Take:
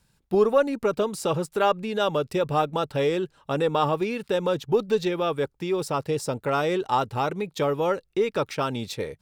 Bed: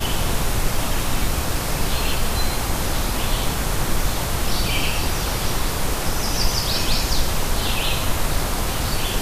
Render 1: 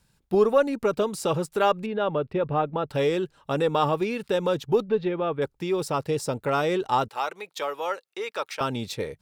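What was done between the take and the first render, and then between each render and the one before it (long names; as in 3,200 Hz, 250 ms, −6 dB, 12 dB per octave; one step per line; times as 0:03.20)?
0:01.86–0:02.90: high-frequency loss of the air 420 metres
0:04.82–0:05.42: high-frequency loss of the air 400 metres
0:07.08–0:08.61: high-pass filter 720 Hz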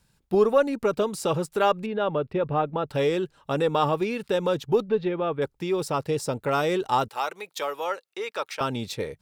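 0:06.50–0:07.84: high-shelf EQ 7,200 Hz +6 dB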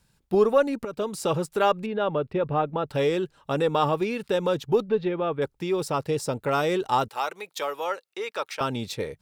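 0:00.85–0:01.31: fade in equal-power, from −14 dB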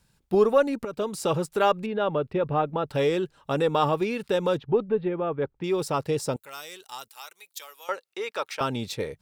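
0:04.58–0:05.64: high-frequency loss of the air 400 metres
0:06.36–0:07.89: first-order pre-emphasis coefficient 0.97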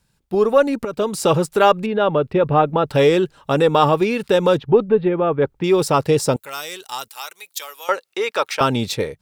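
automatic gain control gain up to 10.5 dB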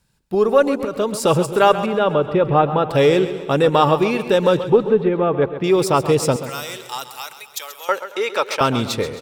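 repeating echo 133 ms, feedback 49%, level −12.5 dB
feedback echo with a swinging delay time 114 ms, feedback 69%, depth 142 cents, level −21.5 dB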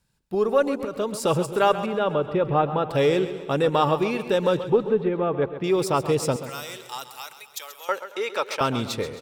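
level −6 dB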